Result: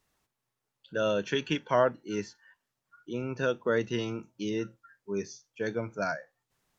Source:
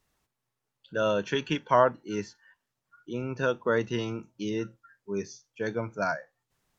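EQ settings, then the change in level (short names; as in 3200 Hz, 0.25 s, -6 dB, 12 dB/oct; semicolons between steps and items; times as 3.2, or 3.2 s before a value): dynamic EQ 1000 Hz, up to -7 dB, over -42 dBFS, Q 1.7; low shelf 130 Hz -4 dB; 0.0 dB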